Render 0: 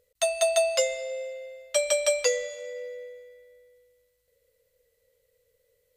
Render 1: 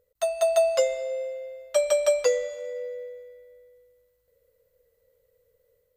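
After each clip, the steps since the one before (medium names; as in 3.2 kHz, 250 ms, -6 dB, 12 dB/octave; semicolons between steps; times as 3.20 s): high-order bell 4.7 kHz -9 dB 2.9 oct; level rider gain up to 3.5 dB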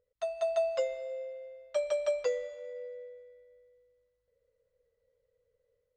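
distance through air 120 m; trim -8 dB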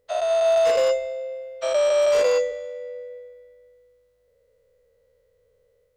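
every event in the spectrogram widened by 240 ms; wavefolder -20 dBFS; trim +6.5 dB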